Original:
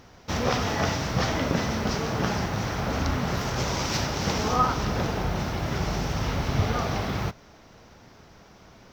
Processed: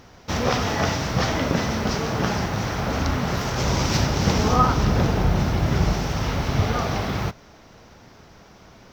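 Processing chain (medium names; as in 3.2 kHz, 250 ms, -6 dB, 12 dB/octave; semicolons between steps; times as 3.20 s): 3.64–5.93 s: bass shelf 290 Hz +6.5 dB; trim +3 dB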